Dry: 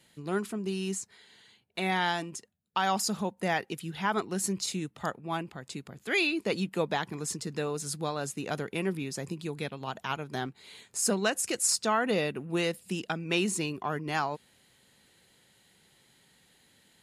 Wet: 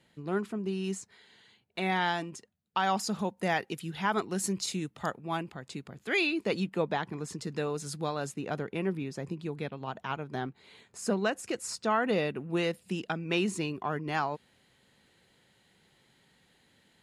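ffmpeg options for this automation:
-af "asetnsamples=n=441:p=0,asendcmd='0.84 lowpass f 3900;3.19 lowpass f 9800;5.54 lowpass f 4600;6.7 lowpass f 2200;7.38 lowpass f 4600;8.34 lowpass f 1800;11.9 lowpass f 3300',lowpass=f=2100:p=1"

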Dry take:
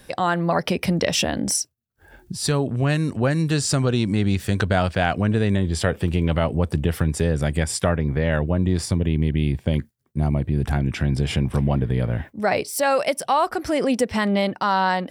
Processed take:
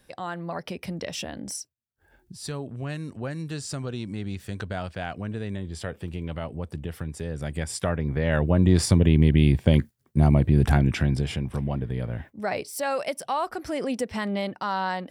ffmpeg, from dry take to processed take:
-af "volume=1.41,afade=t=in:st=7.24:d=0.99:silence=0.375837,afade=t=in:st=8.23:d=0.53:silence=0.473151,afade=t=out:st=10.69:d=0.67:silence=0.298538"

